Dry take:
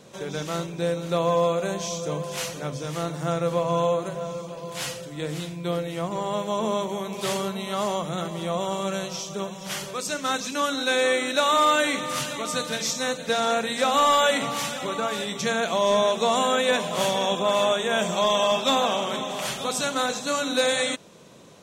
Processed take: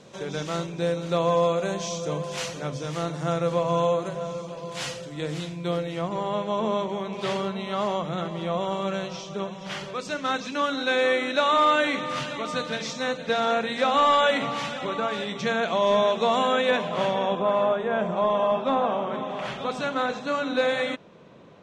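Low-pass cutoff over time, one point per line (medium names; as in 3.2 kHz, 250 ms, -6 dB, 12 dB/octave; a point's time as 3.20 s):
5.70 s 6.8 kHz
6.37 s 3.6 kHz
16.60 s 3.6 kHz
17.73 s 1.4 kHz
19.07 s 1.4 kHz
19.53 s 2.5 kHz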